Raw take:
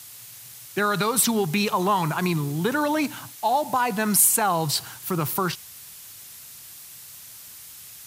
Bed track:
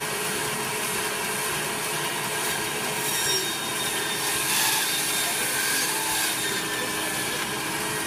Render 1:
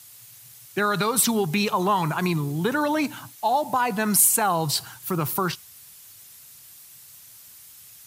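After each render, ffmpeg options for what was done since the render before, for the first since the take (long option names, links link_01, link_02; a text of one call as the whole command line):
ffmpeg -i in.wav -af "afftdn=noise_reduction=6:noise_floor=-44" out.wav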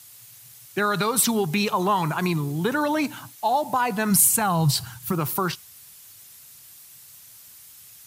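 ffmpeg -i in.wav -filter_complex "[0:a]asplit=3[link_01][link_02][link_03];[link_01]afade=type=out:start_time=4.1:duration=0.02[link_04];[link_02]asubboost=boost=6:cutoff=160,afade=type=in:start_time=4.1:duration=0.02,afade=type=out:start_time=5.11:duration=0.02[link_05];[link_03]afade=type=in:start_time=5.11:duration=0.02[link_06];[link_04][link_05][link_06]amix=inputs=3:normalize=0" out.wav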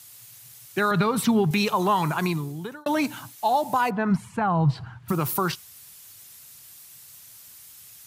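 ffmpeg -i in.wav -filter_complex "[0:a]asettb=1/sr,asplit=3[link_01][link_02][link_03];[link_01]atrim=end=0.914[link_04];[link_02]atrim=start=0.91:end=1.51,asetpts=PTS-STARTPTS,afade=type=in:duration=0.004:curve=qsin,afade=type=out:start_time=0.596:duration=0.004:curve=qsin,bass=frequency=250:gain=7,treble=frequency=4000:gain=-12[link_05];[link_03]atrim=start=1.506[link_06];[link_04][link_05]acrossfade=duration=0.004:curve1=hsin:curve2=qsin[link_07];[link_07][link_06]acrossfade=duration=0.004:curve1=qsin:curve2=hsin,asplit=3[link_08][link_09][link_10];[link_08]afade=type=out:start_time=3.89:duration=0.02[link_11];[link_09]lowpass=1600,afade=type=in:start_time=3.89:duration=0.02,afade=type=out:start_time=5.08:duration=0.02[link_12];[link_10]afade=type=in:start_time=5.08:duration=0.02[link_13];[link_11][link_12][link_13]amix=inputs=3:normalize=0,asplit=2[link_14][link_15];[link_14]atrim=end=2.86,asetpts=PTS-STARTPTS,afade=type=out:start_time=2.18:duration=0.68[link_16];[link_15]atrim=start=2.86,asetpts=PTS-STARTPTS,afade=type=in:duration=0.004:curve=hsin[link_17];[link_16][link_17]concat=n=2:v=0:a=1" out.wav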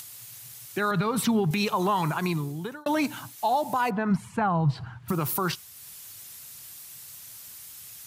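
ffmpeg -i in.wav -af "acompressor=mode=upward:threshold=-38dB:ratio=2.5,alimiter=limit=-16dB:level=0:latency=1:release=145" out.wav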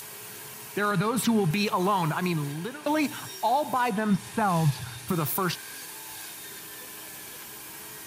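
ffmpeg -i in.wav -i bed.wav -filter_complex "[1:a]volume=-17.5dB[link_01];[0:a][link_01]amix=inputs=2:normalize=0" out.wav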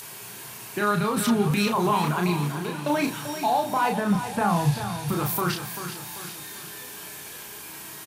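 ffmpeg -i in.wav -filter_complex "[0:a]asplit=2[link_01][link_02];[link_02]adelay=34,volume=-4dB[link_03];[link_01][link_03]amix=inputs=2:normalize=0,aecho=1:1:390|780|1170|1560|1950:0.316|0.149|0.0699|0.0328|0.0154" out.wav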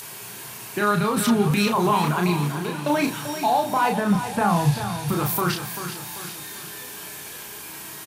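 ffmpeg -i in.wav -af "volume=2.5dB" out.wav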